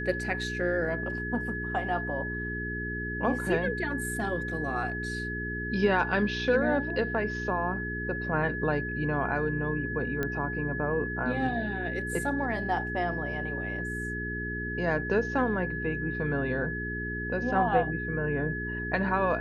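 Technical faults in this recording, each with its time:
mains hum 60 Hz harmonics 7 −36 dBFS
whistle 1,700 Hz −34 dBFS
0:10.23: click −17 dBFS

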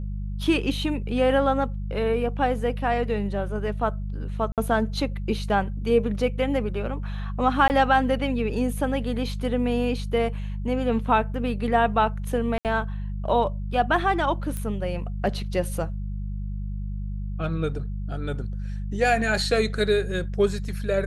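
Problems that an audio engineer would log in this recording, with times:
mains hum 50 Hz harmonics 4 −30 dBFS
0:04.52–0:04.58: drop-out 57 ms
0:07.68–0:07.70: drop-out 19 ms
0:12.58–0:12.65: drop-out 68 ms
0:14.57: click −17 dBFS

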